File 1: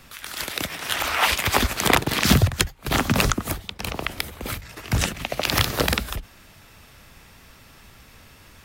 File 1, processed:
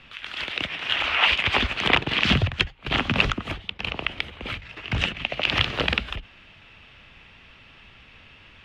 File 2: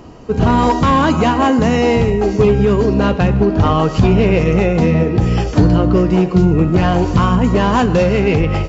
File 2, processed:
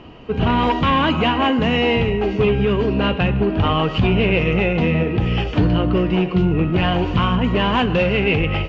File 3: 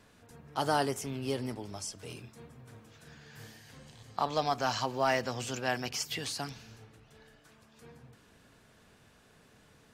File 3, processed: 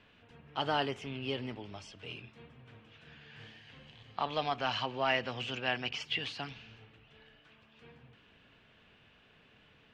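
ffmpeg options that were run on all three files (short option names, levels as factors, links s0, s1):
-filter_complex "[0:a]asplit=2[s0][s1];[s1]asoftclip=type=tanh:threshold=0.141,volume=0.376[s2];[s0][s2]amix=inputs=2:normalize=0,lowpass=f=2900:t=q:w=3.4,volume=0.473"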